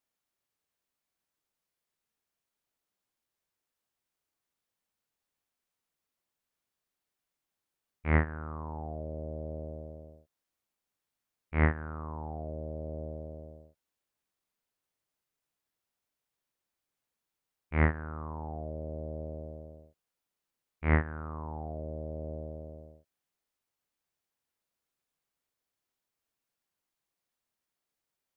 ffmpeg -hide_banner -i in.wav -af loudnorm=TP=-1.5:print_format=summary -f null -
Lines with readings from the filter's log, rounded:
Input Integrated:    -35.3 LUFS
Input True Peak:     -11.6 dBTP
Input LRA:             6.9 LU
Input Threshold:     -46.1 LUFS